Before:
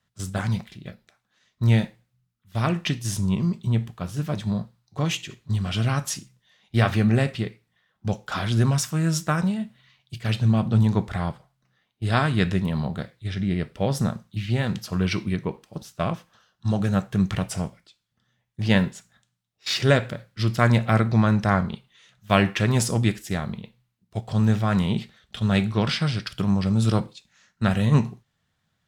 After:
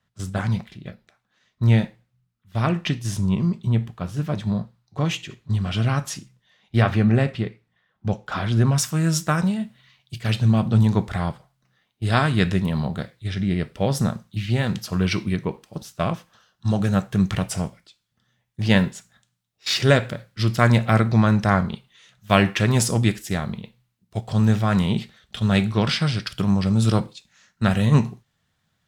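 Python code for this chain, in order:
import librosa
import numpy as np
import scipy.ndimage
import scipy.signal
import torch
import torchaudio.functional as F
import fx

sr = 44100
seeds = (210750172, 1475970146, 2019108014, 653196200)

y = fx.high_shelf(x, sr, hz=4500.0, db=fx.steps((0.0, -7.0), (6.81, -12.0), (8.76, 2.0)))
y = y * 10.0 ** (2.0 / 20.0)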